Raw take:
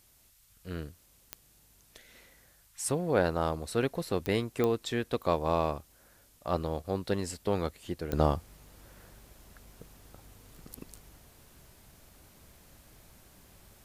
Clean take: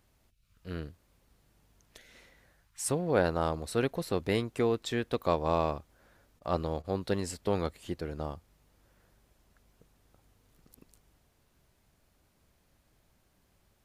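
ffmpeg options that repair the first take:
-af "adeclick=t=4,agate=range=-21dB:threshold=-54dB,asetnsamples=n=441:p=0,asendcmd='8.13 volume volume -11.5dB',volume=0dB"

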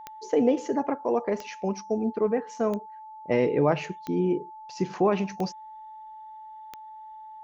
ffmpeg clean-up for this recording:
-af "adeclick=t=4,bandreject=f=870:w=30"

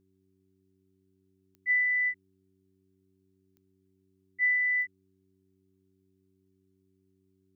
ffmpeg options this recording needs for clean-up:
-af "adeclick=t=4,bandreject=f=95:t=h:w=4,bandreject=f=190:t=h:w=4,bandreject=f=285:t=h:w=4,bandreject=f=380:t=h:w=4"

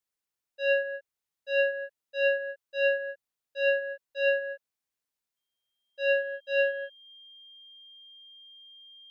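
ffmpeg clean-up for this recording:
-af "bandreject=f=3.2k:w=30"

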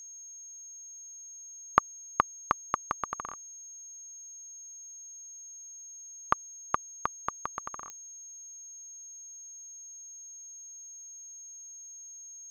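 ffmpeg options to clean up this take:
-af "adeclick=t=4,bandreject=f=6.5k:w=30"

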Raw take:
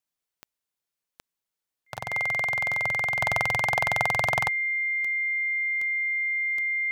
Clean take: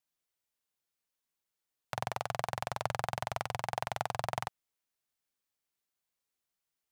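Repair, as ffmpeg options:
-af "adeclick=t=4,bandreject=f=2.1k:w=30,asetnsamples=n=441:p=0,asendcmd='3.19 volume volume -7.5dB',volume=0dB"

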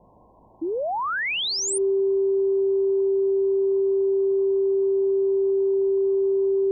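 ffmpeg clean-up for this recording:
-af "bandreject=f=53.7:t=h:w=4,bandreject=f=107.4:t=h:w=4,bandreject=f=161.1:t=h:w=4,bandreject=f=214.8:t=h:w=4,bandreject=f=390:w=30,afftdn=nr=30:nf=-26"

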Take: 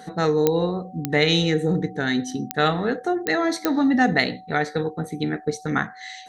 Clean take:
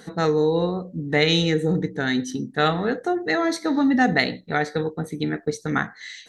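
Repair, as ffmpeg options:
-af "adeclick=t=4,bandreject=f=750:w=30"

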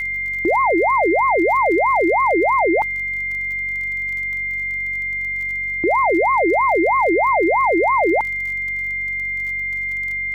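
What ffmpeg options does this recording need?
-af "adeclick=t=4,bandreject=f=47.2:t=h:w=4,bandreject=f=94.4:t=h:w=4,bandreject=f=141.6:t=h:w=4,bandreject=f=188.8:t=h:w=4,bandreject=f=236:t=h:w=4,bandreject=f=2.1k:w=30,agate=range=-21dB:threshold=-16dB"

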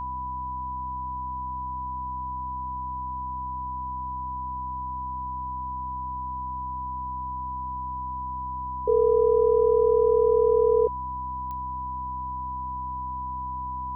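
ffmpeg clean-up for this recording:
-af "adeclick=t=4,bandreject=f=64.4:t=h:w=4,bandreject=f=128.8:t=h:w=4,bandreject=f=193.2:t=h:w=4,bandreject=f=257.6:t=h:w=4,bandreject=f=322:t=h:w=4,bandreject=f=990:w=30,agate=range=-21dB:threshold=-24dB"

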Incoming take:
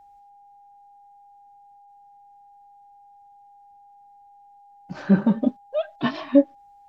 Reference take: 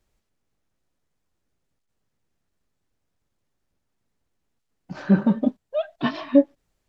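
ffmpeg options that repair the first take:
-af "bandreject=f=810:w=30"

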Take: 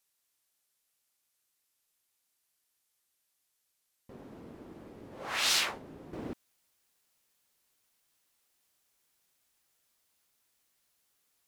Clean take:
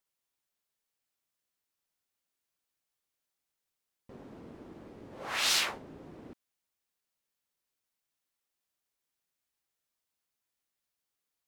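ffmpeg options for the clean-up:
-af "agate=range=-21dB:threshold=-71dB,asetnsamples=n=441:p=0,asendcmd='6.13 volume volume -9.5dB',volume=0dB"

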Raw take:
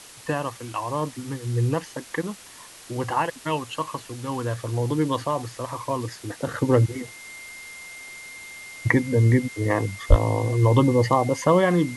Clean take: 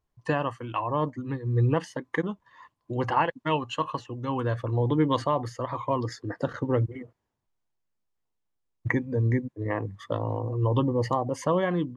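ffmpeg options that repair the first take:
-filter_complex "[0:a]bandreject=f=2.1k:w=30,asplit=3[a][b][c];[a]afade=t=out:st=10.09:d=0.02[d];[b]highpass=f=140:w=0.5412,highpass=f=140:w=1.3066,afade=t=in:st=10.09:d=0.02,afade=t=out:st=10.21:d=0.02[e];[c]afade=t=in:st=10.21:d=0.02[f];[d][e][f]amix=inputs=3:normalize=0,afwtdn=0.0071,asetnsamples=n=441:p=0,asendcmd='6.47 volume volume -6.5dB',volume=0dB"

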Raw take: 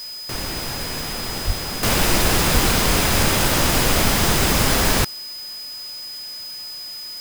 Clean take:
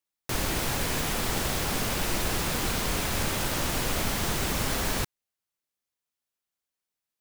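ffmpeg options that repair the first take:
-filter_complex "[0:a]bandreject=f=5k:w=30,asplit=3[a][b][c];[a]afade=t=out:st=1.46:d=0.02[d];[b]highpass=f=140:w=0.5412,highpass=f=140:w=1.3066,afade=t=in:st=1.46:d=0.02,afade=t=out:st=1.58:d=0.02[e];[c]afade=t=in:st=1.58:d=0.02[f];[d][e][f]amix=inputs=3:normalize=0,asplit=3[g][h][i];[g]afade=t=out:st=2.53:d=0.02[j];[h]highpass=f=140:w=0.5412,highpass=f=140:w=1.3066,afade=t=in:st=2.53:d=0.02,afade=t=out:st=2.65:d=0.02[k];[i]afade=t=in:st=2.65:d=0.02[l];[j][k][l]amix=inputs=3:normalize=0,afwtdn=0.0079,asetnsamples=n=441:p=0,asendcmd='1.83 volume volume -10.5dB',volume=0dB"

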